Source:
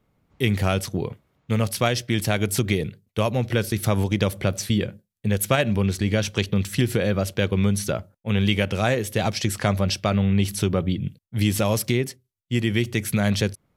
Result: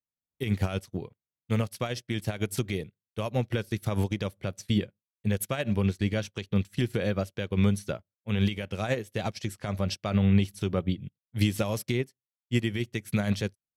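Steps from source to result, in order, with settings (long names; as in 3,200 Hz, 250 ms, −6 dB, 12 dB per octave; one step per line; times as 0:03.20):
brickwall limiter −11.5 dBFS, peak gain reduction 6.5 dB
expander for the loud parts 2.5 to 1, over −44 dBFS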